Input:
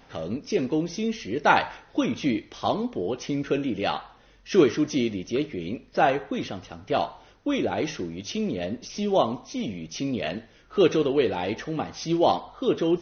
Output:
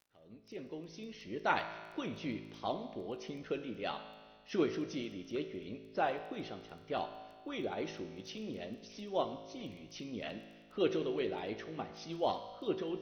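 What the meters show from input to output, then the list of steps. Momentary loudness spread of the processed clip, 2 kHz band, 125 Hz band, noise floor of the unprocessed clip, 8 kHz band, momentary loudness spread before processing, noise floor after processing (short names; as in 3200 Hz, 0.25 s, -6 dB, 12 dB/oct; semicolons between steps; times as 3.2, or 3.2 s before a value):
13 LU, -12.0 dB, -14.5 dB, -55 dBFS, n/a, 11 LU, -59 dBFS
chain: opening faded in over 1.30 s; LPF 5300 Hz 24 dB/oct; harmonic-percussive split harmonic -8 dB; resonator 190 Hz, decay 1.4 s, mix 60%; crackle 10/s -46 dBFS; resonator 54 Hz, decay 1.8 s, harmonics all, mix 70%; gain +6 dB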